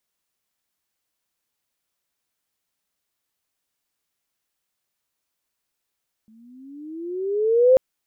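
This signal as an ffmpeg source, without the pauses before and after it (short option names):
-f lavfi -i "aevalsrc='pow(10,(-9+40*(t/1.49-1))/20)*sin(2*PI*216*1.49/(15.5*log(2)/12)*(exp(15.5*log(2)/12*t/1.49)-1))':d=1.49:s=44100"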